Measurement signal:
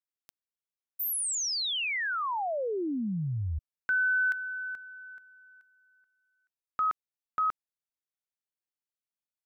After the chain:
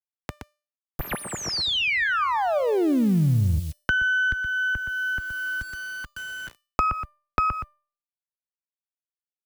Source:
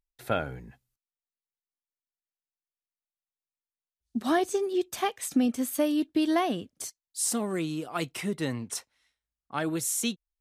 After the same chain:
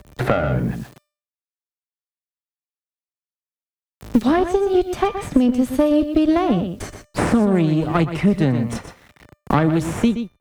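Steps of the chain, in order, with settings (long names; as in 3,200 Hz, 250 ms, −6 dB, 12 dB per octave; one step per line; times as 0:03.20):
gain on one half-wave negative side −12 dB
RIAA equalisation playback
on a send: single-tap delay 121 ms −11 dB
on the sum: bit reduction 12 bits
high-pass filter 65 Hz 12 dB per octave
automatic gain control gain up to 9.5 dB
tuned comb filter 600 Hz, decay 0.34 s, mix 60%
multiband upward and downward compressor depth 100%
level +8 dB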